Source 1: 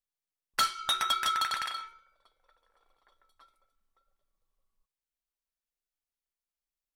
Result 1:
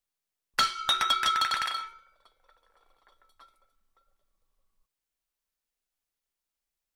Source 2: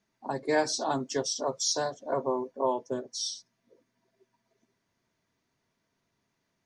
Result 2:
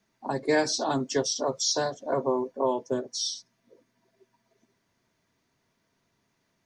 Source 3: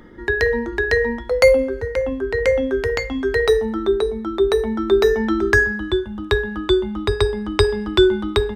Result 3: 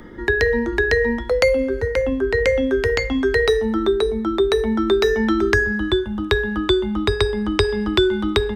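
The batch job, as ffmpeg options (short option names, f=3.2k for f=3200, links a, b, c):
-filter_complex "[0:a]acrossover=split=540|1400|6800[a][b][c][d];[a]acompressor=threshold=-21dB:ratio=4[e];[b]acompressor=threshold=-36dB:ratio=4[f];[c]acompressor=threshold=-25dB:ratio=4[g];[d]acompressor=threshold=-51dB:ratio=4[h];[e][f][g][h]amix=inputs=4:normalize=0,volume=4.5dB"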